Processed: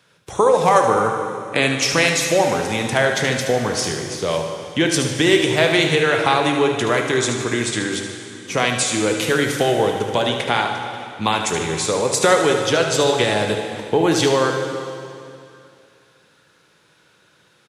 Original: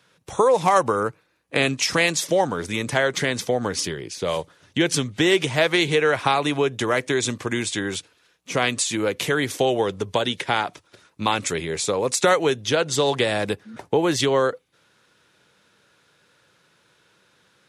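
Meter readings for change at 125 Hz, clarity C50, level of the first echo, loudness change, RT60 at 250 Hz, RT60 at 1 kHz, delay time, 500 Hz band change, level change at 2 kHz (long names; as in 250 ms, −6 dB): +4.5 dB, 3.5 dB, −9.5 dB, +3.5 dB, 2.5 s, 2.6 s, 75 ms, +4.0 dB, +4.0 dB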